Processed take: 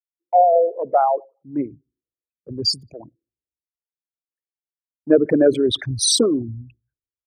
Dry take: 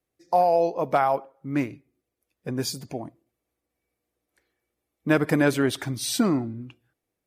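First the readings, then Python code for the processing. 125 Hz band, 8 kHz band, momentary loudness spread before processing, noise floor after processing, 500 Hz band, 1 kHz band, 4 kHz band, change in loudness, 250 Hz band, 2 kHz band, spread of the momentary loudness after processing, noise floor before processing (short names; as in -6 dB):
-1.0 dB, +10.0 dB, 16 LU, under -85 dBFS, +6.5 dB, +5.0 dB, +11.5 dB, +6.0 dB, +3.0 dB, -7.0 dB, 15 LU, -84 dBFS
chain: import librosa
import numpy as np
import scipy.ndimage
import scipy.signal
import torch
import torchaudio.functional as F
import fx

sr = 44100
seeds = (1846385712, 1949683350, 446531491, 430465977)

y = fx.envelope_sharpen(x, sr, power=3.0)
y = fx.band_widen(y, sr, depth_pct=100)
y = y * 10.0 ** (3.5 / 20.0)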